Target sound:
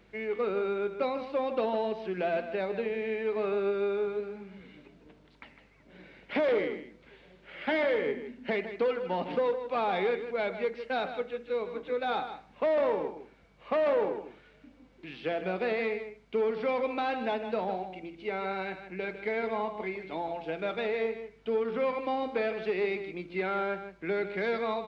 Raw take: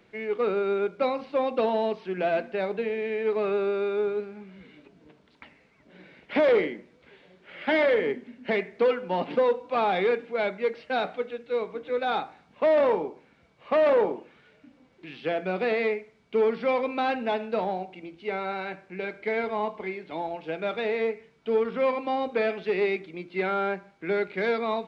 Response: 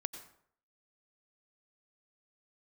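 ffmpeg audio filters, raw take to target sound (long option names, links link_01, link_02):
-filter_complex "[0:a]acompressor=threshold=-30dB:ratio=1.5,aeval=exprs='val(0)+0.000631*(sin(2*PI*50*n/s)+sin(2*PI*2*50*n/s)/2+sin(2*PI*3*50*n/s)/3+sin(2*PI*4*50*n/s)/4+sin(2*PI*5*50*n/s)/5)':channel_layout=same,asplit=2[link_01][link_02];[link_02]aecho=0:1:155:0.299[link_03];[link_01][link_03]amix=inputs=2:normalize=0,volume=-1.5dB"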